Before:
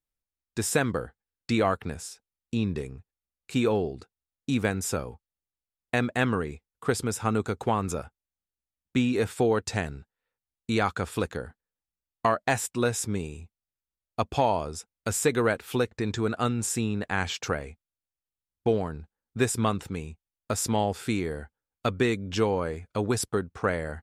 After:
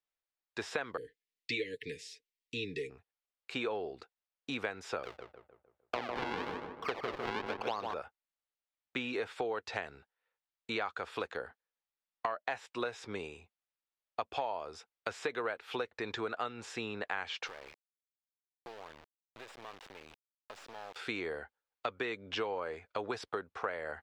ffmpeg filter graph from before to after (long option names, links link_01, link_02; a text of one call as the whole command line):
ffmpeg -i in.wav -filter_complex "[0:a]asettb=1/sr,asplit=3[link_01][link_02][link_03];[link_01]atrim=end=0.974[link_04];[link_02]atrim=start=0.97:end=2.9,asetpts=PTS-STARTPTS,afade=type=in:duration=0.004:curve=qsin,afade=type=out:start_time=1.926:duration=0.004:curve=qsin,asuperstop=centerf=940:order=20:qfactor=0.72,highshelf=frequency=6400:gain=9,aecho=1:1:6.9:0.6,atrim=end_sample=85113[link_05];[link_03]atrim=start=2.896[link_06];[link_04][link_05]acrossfade=duration=0.004:curve1=hsin:curve2=qsin[link_07];[link_07][link_06]acrossfade=duration=0.004:curve1=qsin:curve2=hsin,asettb=1/sr,asplit=3[link_08][link_09][link_10];[link_08]atrim=end=5.034[link_11];[link_09]atrim=start=5.03:end=7.94,asetpts=PTS-STARTPTS,afade=type=in:duration=0.004:curve=qsin,afade=type=out:start_time=2.906:duration=0.004:curve=qsin,acrusher=samples=41:mix=1:aa=0.000001:lfo=1:lforange=65.6:lforate=1,asplit=2[link_12][link_13];[link_13]adelay=152,lowpass=frequency=1800:poles=1,volume=-5dB,asplit=2[link_14][link_15];[link_15]adelay=152,lowpass=frequency=1800:poles=1,volume=0.48,asplit=2[link_16][link_17];[link_17]adelay=152,lowpass=frequency=1800:poles=1,volume=0.48,asplit=2[link_18][link_19];[link_19]adelay=152,lowpass=frequency=1800:poles=1,volume=0.48,asplit=2[link_20][link_21];[link_21]adelay=152,lowpass=frequency=1800:poles=1,volume=0.48,asplit=2[link_22][link_23];[link_23]adelay=152,lowpass=frequency=1800:poles=1,volume=0.48[link_24];[link_12][link_14][link_16][link_18][link_20][link_22][link_24]amix=inputs=7:normalize=0,atrim=end_sample=128331[link_25];[link_10]atrim=start=7.936[link_26];[link_11][link_25]acrossfade=duration=0.004:curve1=hsin:curve2=qsin[link_27];[link_27][link_26]acrossfade=duration=0.004:curve1=qsin:curve2=hsin,asettb=1/sr,asplit=3[link_28][link_29][link_30];[link_28]atrim=end=17.474[link_31];[link_29]atrim=start=17.47:end=20.96,asetpts=PTS-STARTPTS,afade=type=in:duration=0.004:curve=qsin,afade=type=out:start_time=3.486:duration=0.004:curve=qsin,bandreject=frequency=1400:width=7.2,acompressor=threshold=-37dB:ratio=12:attack=3.2:release=140:knee=1:detection=peak,acrusher=bits=5:dc=4:mix=0:aa=0.000001[link_32];[link_30]atrim=start=20.956[link_33];[link_31][link_32]acrossfade=duration=0.004:curve1=hsin:curve2=qsin[link_34];[link_34][link_33]acrossfade=duration=0.004:curve1=qsin:curve2=hsin,acrossover=split=5100[link_35][link_36];[link_36]acompressor=threshold=-46dB:ratio=4:attack=1:release=60[link_37];[link_35][link_37]amix=inputs=2:normalize=0,acrossover=split=420 4900:gain=0.1 1 0.112[link_38][link_39][link_40];[link_38][link_39][link_40]amix=inputs=3:normalize=0,acompressor=threshold=-34dB:ratio=5,volume=1dB" out.wav